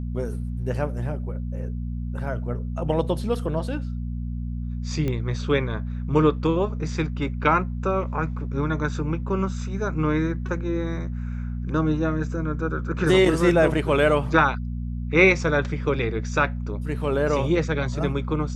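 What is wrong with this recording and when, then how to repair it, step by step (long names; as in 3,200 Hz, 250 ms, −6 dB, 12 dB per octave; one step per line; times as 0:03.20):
mains hum 60 Hz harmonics 4 −29 dBFS
0:05.08: click −16 dBFS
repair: click removal
hum removal 60 Hz, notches 4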